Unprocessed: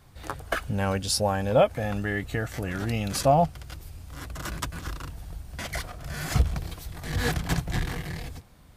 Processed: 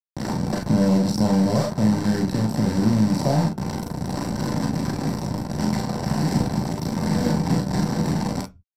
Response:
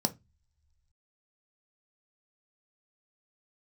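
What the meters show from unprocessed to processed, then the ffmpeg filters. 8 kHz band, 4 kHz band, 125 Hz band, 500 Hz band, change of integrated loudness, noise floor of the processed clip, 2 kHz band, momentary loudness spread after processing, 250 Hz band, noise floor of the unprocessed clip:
0.0 dB, +1.0 dB, +7.0 dB, 0.0 dB, +5.5 dB, −42 dBFS, −3.0 dB, 8 LU, +13.5 dB, −51 dBFS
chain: -filter_complex "[0:a]acrossover=split=160|430[link_01][link_02][link_03];[link_01]acompressor=threshold=-38dB:ratio=4[link_04];[link_02]acompressor=threshold=-45dB:ratio=4[link_05];[link_03]acompressor=threshold=-42dB:ratio=4[link_06];[link_04][link_05][link_06]amix=inputs=3:normalize=0,firequalizer=gain_entry='entry(500,0);entry(1100,-5);entry(4300,-14)':delay=0.05:min_phase=1,acrusher=bits=4:dc=4:mix=0:aa=0.000001,areverse,acompressor=mode=upward:threshold=-41dB:ratio=2.5,areverse,equalizer=frequency=1500:width=6.5:gain=5.5,aecho=1:1:37|47:0.531|0.422[link_07];[1:a]atrim=start_sample=2205,afade=type=out:start_time=0.23:duration=0.01,atrim=end_sample=10584[link_08];[link_07][link_08]afir=irnorm=-1:irlink=0,aresample=32000,aresample=44100,volume=7.5dB"

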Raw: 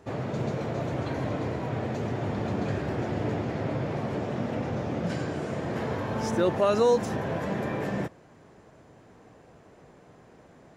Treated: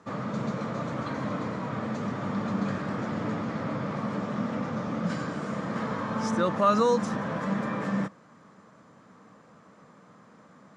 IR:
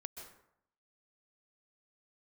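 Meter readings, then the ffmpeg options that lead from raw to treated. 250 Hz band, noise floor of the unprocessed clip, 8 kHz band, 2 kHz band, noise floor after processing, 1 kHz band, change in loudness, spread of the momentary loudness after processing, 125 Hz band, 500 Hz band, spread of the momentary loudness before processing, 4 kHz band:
+1.5 dB, −55 dBFS, −0.5 dB, +1.0 dB, −56 dBFS, +3.0 dB, −0.5 dB, 9 LU, −3.0 dB, −3.0 dB, 8 LU, −1.0 dB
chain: -af "highpass=160,equalizer=frequency=200:width_type=q:width=4:gain=8,equalizer=frequency=380:width_type=q:width=4:gain=-10,equalizer=frequency=720:width_type=q:width=4:gain=-6,equalizer=frequency=1200:width_type=q:width=4:gain=10,equalizer=frequency=2700:width_type=q:width=4:gain=-4,lowpass=frequency=9100:width=0.5412,lowpass=frequency=9100:width=1.3066"

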